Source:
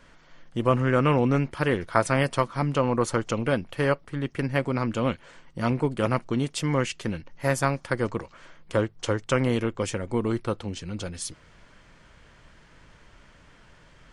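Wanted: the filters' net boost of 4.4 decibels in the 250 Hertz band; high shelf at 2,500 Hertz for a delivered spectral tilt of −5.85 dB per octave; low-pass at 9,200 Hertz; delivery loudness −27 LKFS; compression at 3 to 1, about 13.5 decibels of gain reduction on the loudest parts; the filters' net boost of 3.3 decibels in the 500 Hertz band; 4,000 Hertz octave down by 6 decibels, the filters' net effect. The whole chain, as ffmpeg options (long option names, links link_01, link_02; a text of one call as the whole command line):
ffmpeg -i in.wav -af "lowpass=9200,equalizer=frequency=250:width_type=o:gain=4.5,equalizer=frequency=500:width_type=o:gain=3,highshelf=frequency=2500:gain=-5.5,equalizer=frequency=4000:width_type=o:gain=-3.5,acompressor=threshold=-34dB:ratio=3,volume=8.5dB" out.wav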